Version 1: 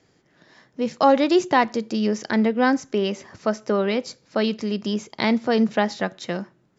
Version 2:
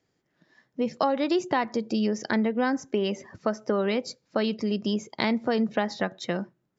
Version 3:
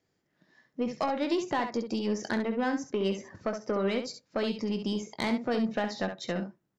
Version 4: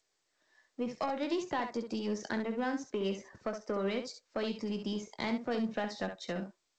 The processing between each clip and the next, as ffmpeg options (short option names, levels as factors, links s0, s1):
-af "afftdn=nr=13:nf=-42,acompressor=threshold=0.0794:ratio=4"
-af "asoftclip=type=tanh:threshold=0.133,aecho=1:1:21|67:0.282|0.398,volume=0.708"
-filter_complex "[0:a]acrossover=split=380|780[s0][s1][s2];[s0]aeval=exprs='sgn(val(0))*max(abs(val(0))-0.00188,0)':c=same[s3];[s3][s1][s2]amix=inputs=3:normalize=0,volume=0.596" -ar 16000 -c:a g722